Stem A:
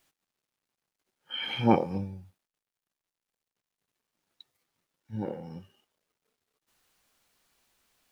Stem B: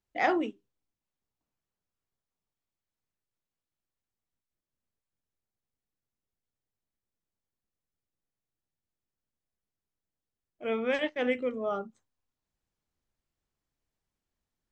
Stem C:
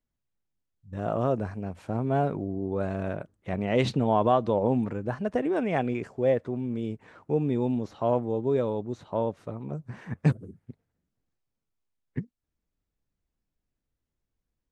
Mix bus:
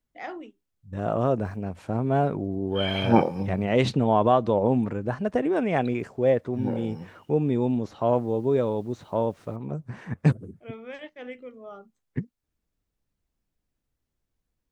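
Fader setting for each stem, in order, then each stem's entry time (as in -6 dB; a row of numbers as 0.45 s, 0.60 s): +3.0 dB, -10.5 dB, +2.5 dB; 1.45 s, 0.00 s, 0.00 s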